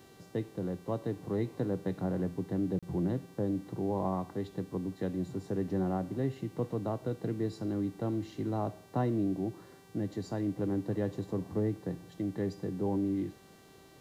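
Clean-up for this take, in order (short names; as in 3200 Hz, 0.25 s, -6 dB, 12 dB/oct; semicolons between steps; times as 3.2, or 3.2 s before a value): de-hum 388.6 Hz, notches 40; interpolate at 2.79, 36 ms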